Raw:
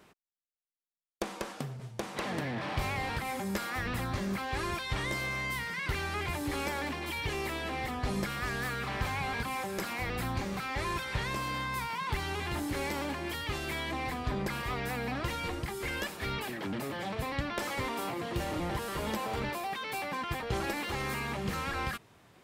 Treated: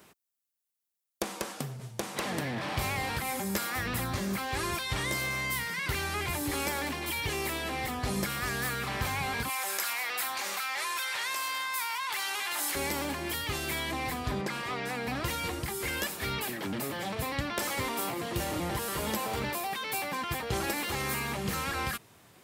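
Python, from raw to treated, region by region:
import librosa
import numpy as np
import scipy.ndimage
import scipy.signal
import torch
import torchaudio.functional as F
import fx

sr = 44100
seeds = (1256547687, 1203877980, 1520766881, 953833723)

y = fx.chain(x, sr, fx.highpass(hz=900.0, slope=12),
    fx.env_flatten(amount_pct=70), at=(9.49, 12.75))
y = fx.chain(y, sr, fx.highpass(hz=170.0, slope=12),
    fx.air_absorb(metres=56.0), at=(14.41, 15.07))
y = scipy.signal.sosfilt(scipy.signal.butter(2, 52.0, 'highpass', fs=sr, output='sos'), y)
y = fx.high_shelf(y, sr, hz=6400.0, db=12.0)
y = F.gain(torch.from_numpy(y), 1.0).numpy()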